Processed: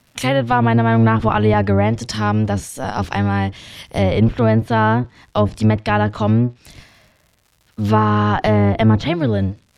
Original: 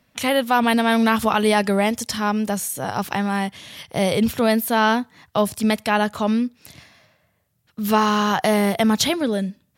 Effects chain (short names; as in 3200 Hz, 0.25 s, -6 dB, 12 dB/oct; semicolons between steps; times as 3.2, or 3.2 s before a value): octaver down 1 oct, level +2 dB; crackle 200/s -43 dBFS; treble ducked by the level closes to 1700 Hz, closed at -12 dBFS; gain +2 dB